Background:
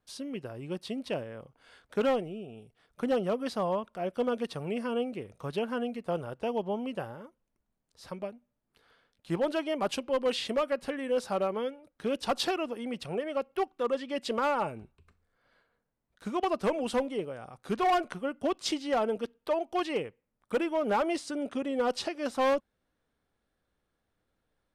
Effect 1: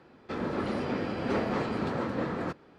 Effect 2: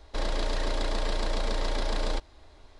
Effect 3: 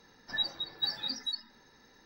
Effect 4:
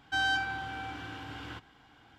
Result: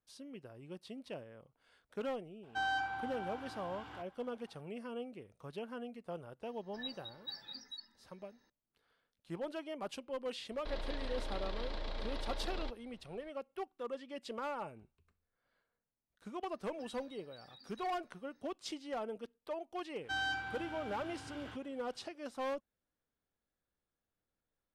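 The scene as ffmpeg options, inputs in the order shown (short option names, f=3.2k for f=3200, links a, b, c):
-filter_complex "[4:a]asplit=2[a][b];[3:a]asplit=2[c][d];[0:a]volume=-12dB[e];[a]equalizer=f=840:w=1.1:g=10[f];[2:a]highshelf=f=5.4k:t=q:w=1.5:g=-11.5[g];[d]acompressor=threshold=-40dB:ratio=6:attack=3.2:release=140:knee=1:detection=peak[h];[f]atrim=end=2.18,asetpts=PTS-STARTPTS,volume=-11.5dB,afade=t=in:d=0.004:c=hsin,afade=t=out:st=2.176:d=0.004:c=hsin,adelay=2430[i];[c]atrim=end=2.05,asetpts=PTS-STARTPTS,volume=-13dB,afade=t=in:d=0.004:c=hsin,afade=t=out:st=2.046:d=0.004:c=hsin,adelay=6450[j];[g]atrim=end=2.79,asetpts=PTS-STARTPTS,volume=-12.5dB,afade=t=in:d=0.004:c=hsin,afade=t=out:st=2.786:d=0.004:c=hsin,adelay=10510[k];[h]atrim=end=2.05,asetpts=PTS-STARTPTS,volume=-16dB,afade=t=in:d=0.1,afade=t=out:st=1.95:d=0.1,adelay=16510[l];[b]atrim=end=2.18,asetpts=PTS-STARTPTS,volume=-7.5dB,afade=t=in:d=0.1,afade=t=out:st=2.08:d=0.1,adelay=19970[m];[e][i][j][k][l][m]amix=inputs=6:normalize=0"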